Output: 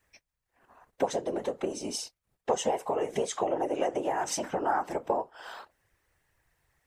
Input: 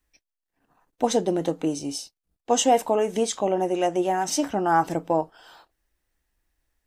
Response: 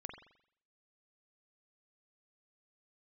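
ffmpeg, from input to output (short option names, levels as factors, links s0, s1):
-af "acompressor=threshold=0.0251:ratio=12,equalizer=f=125:t=o:w=1:g=-11,equalizer=f=500:t=o:w=1:g=7,equalizer=f=1000:t=o:w=1:g=6,equalizer=f=2000:t=o:w=1:g=7,equalizer=f=8000:t=o:w=1:g=3,afftfilt=real='hypot(re,im)*cos(2*PI*random(0))':imag='hypot(re,im)*sin(2*PI*random(1))':win_size=512:overlap=0.75,volume=2.11"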